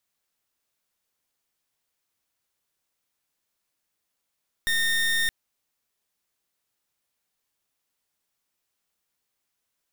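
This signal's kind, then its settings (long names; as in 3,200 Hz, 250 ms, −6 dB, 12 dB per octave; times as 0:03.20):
pulse wave 1,830 Hz, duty 28% −23.5 dBFS 0.62 s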